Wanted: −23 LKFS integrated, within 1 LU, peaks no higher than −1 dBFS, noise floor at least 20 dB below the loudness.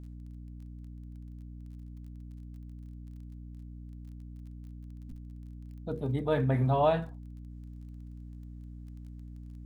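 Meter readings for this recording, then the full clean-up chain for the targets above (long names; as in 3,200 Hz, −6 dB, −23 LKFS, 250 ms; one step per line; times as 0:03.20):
crackle rate 24 per second; mains hum 60 Hz; hum harmonics up to 300 Hz; level of the hum −42 dBFS; integrated loudness −29.5 LKFS; sample peak −13.5 dBFS; target loudness −23.0 LKFS
→ click removal
hum removal 60 Hz, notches 5
level +6.5 dB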